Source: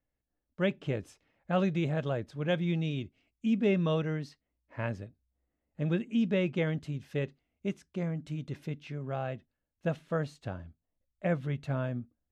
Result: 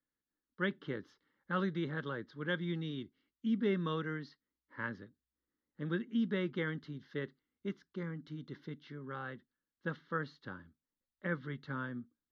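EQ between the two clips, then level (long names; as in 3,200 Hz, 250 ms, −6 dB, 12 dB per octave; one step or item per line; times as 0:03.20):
three-way crossover with the lows and the highs turned down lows −18 dB, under 200 Hz, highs −20 dB, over 4,800 Hz
phaser with its sweep stopped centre 2,500 Hz, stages 6
dynamic equaliser 1,700 Hz, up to +3 dB, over −54 dBFS, Q 1
0.0 dB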